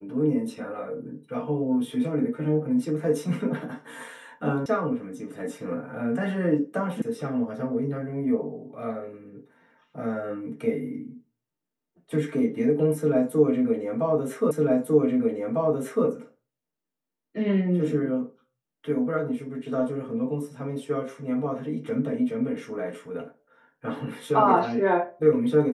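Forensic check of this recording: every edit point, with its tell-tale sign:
4.66 s: sound stops dead
7.02 s: sound stops dead
14.51 s: repeat of the last 1.55 s

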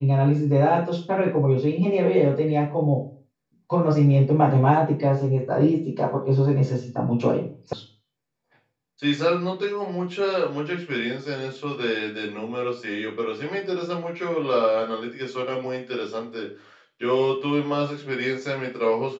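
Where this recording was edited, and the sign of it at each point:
7.73 s: sound stops dead

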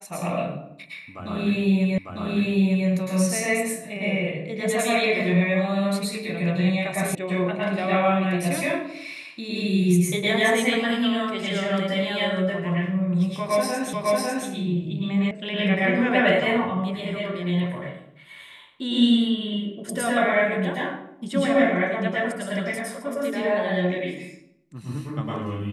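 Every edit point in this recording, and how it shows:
1.98 s: repeat of the last 0.9 s
7.15 s: sound stops dead
13.93 s: repeat of the last 0.55 s
15.31 s: sound stops dead

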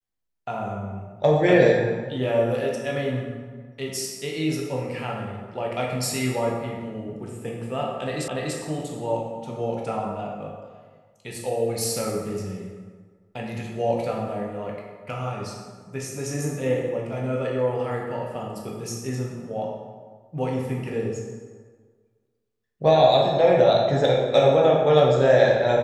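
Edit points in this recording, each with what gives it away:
8.28 s: repeat of the last 0.29 s

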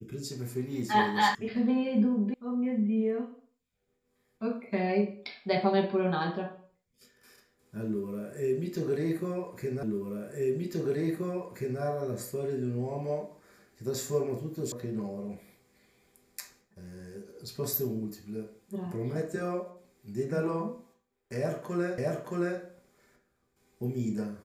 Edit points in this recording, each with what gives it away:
1.35 s: sound stops dead
2.34 s: sound stops dead
9.83 s: repeat of the last 1.98 s
14.72 s: sound stops dead
21.98 s: repeat of the last 0.62 s

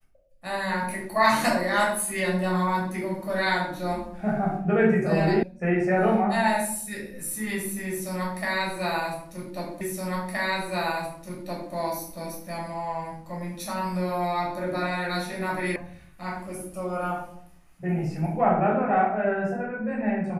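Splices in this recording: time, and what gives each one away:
5.43 s: sound stops dead
9.81 s: repeat of the last 1.92 s
15.76 s: sound stops dead

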